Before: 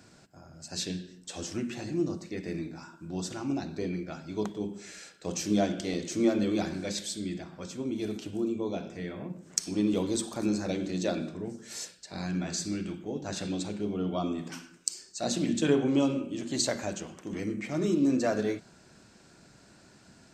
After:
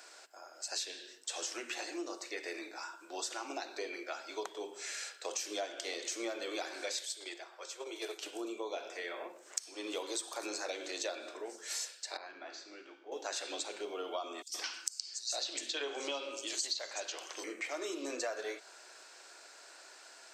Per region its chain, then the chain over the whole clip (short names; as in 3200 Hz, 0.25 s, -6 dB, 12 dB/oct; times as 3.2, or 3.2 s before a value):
7.05–8.23 gate -35 dBFS, range -6 dB + steep high-pass 330 Hz 48 dB/oct
12.17–13.12 LPF 5200 Hz 24 dB/oct + high shelf 2400 Hz -11.5 dB + resonator 56 Hz, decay 0.82 s, mix 70%
14.42–17.44 bell 4600 Hz +11 dB 1.1 oct + three bands offset in time highs, lows, mids 70/120 ms, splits 160/5700 Hz
whole clip: Bessel high-pass 700 Hz, order 8; compressor 5:1, threshold -42 dBFS; gain +6 dB